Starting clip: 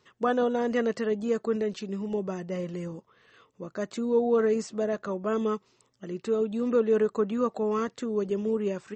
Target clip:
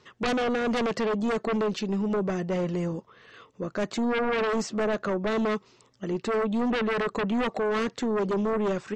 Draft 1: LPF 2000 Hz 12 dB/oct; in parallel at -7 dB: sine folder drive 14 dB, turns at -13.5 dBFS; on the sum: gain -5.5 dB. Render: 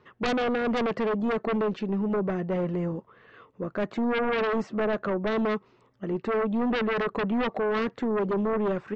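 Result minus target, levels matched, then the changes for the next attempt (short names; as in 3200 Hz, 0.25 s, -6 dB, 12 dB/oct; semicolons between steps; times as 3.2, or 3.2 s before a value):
8000 Hz band -13.0 dB
change: LPF 6800 Hz 12 dB/oct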